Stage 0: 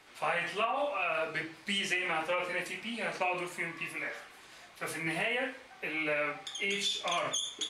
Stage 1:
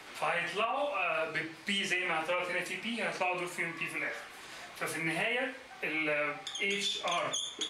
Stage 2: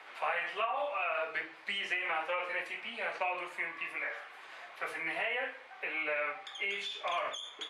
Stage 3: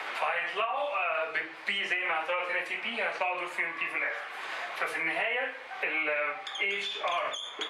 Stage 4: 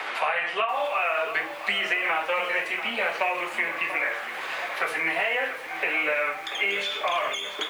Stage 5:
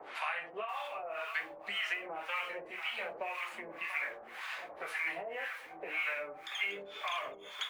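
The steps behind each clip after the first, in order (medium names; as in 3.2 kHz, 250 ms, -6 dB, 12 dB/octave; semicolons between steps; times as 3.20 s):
three bands compressed up and down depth 40%
three-band isolator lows -20 dB, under 460 Hz, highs -16 dB, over 3.1 kHz
three bands compressed up and down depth 70%; trim +4 dB
bit-crushed delay 688 ms, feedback 55%, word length 8-bit, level -11 dB; trim +4.5 dB
harmonic tremolo 1.9 Hz, depth 100%, crossover 800 Hz; trim -7.5 dB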